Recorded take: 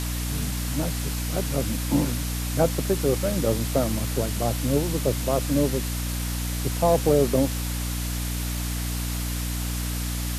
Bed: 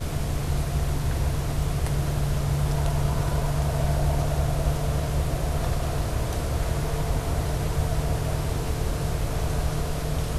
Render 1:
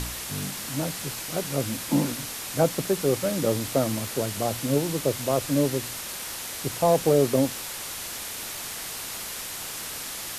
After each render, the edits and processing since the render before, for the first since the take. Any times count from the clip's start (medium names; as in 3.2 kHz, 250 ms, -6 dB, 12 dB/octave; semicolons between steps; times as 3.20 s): de-hum 60 Hz, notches 5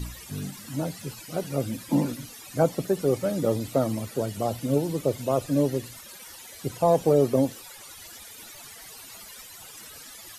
noise reduction 16 dB, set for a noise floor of -35 dBFS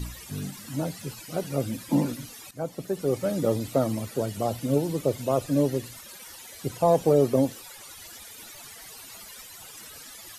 2.51–3.31 s: fade in, from -15 dB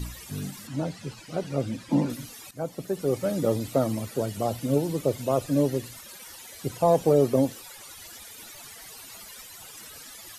0.67–2.10 s: distance through air 65 m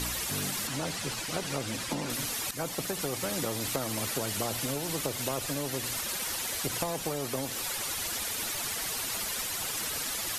compression, threshold -27 dBFS, peak gain reduction 11.5 dB; spectrum-flattening compressor 2:1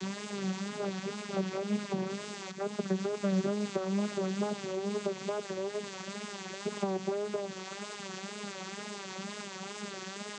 vocoder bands 16, saw 198 Hz; wow and flutter 84 cents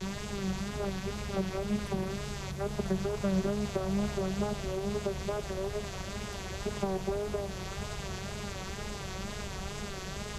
add bed -15.5 dB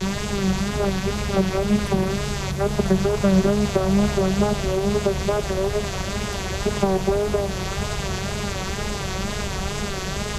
trim +12 dB